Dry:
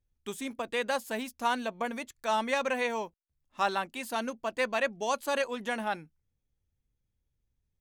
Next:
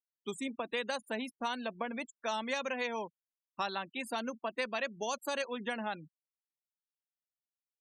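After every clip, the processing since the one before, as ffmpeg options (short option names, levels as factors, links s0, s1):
-filter_complex "[0:a]afftfilt=real='re*gte(hypot(re,im),0.01)':imag='im*gte(hypot(re,im),0.01)':win_size=1024:overlap=0.75,acrossover=split=150|3000[s0][s1][s2];[s1]acompressor=threshold=0.0224:ratio=6[s3];[s0][s3][s2]amix=inputs=3:normalize=0"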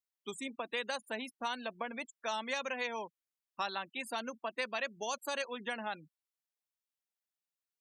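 -af "lowshelf=f=430:g=-7"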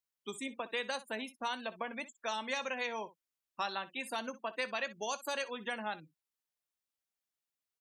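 -af "aecho=1:1:19|62:0.178|0.141"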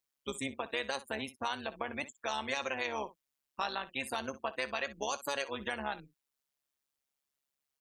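-filter_complex "[0:a]tremolo=f=140:d=0.75,asplit=2[s0][s1];[s1]alimiter=level_in=2.24:limit=0.0631:level=0:latency=1:release=221,volume=0.447,volume=1.19[s2];[s0][s2]amix=inputs=2:normalize=0"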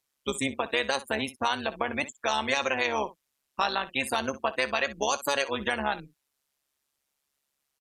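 -af "aresample=32000,aresample=44100,volume=2.66"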